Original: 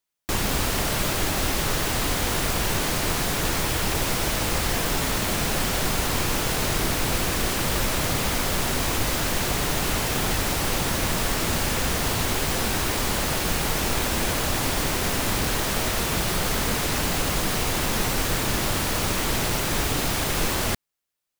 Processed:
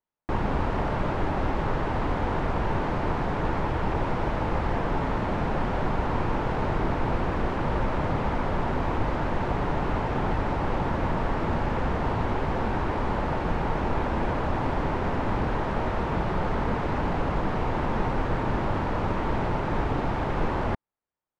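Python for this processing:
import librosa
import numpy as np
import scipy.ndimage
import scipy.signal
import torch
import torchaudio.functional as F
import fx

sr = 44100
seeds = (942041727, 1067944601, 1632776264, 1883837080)

y = scipy.signal.sosfilt(scipy.signal.butter(2, 1300.0, 'lowpass', fs=sr, output='sos'), x)
y = fx.peak_eq(y, sr, hz=900.0, db=5.0, octaves=0.29)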